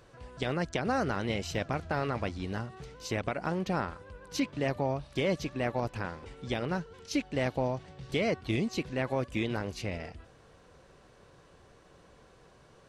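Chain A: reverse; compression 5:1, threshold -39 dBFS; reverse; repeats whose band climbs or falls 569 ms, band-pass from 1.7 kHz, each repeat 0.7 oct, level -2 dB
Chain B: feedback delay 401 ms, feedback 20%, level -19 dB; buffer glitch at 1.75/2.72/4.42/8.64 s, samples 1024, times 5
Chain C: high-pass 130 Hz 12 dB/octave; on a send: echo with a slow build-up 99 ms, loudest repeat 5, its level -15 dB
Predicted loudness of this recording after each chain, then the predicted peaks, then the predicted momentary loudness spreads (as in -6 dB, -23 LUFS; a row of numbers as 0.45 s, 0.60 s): -43.0 LUFS, -33.0 LUFS, -33.0 LUFS; -26.0 dBFS, -16.5 dBFS, -14.0 dBFS; 14 LU, 9 LU, 12 LU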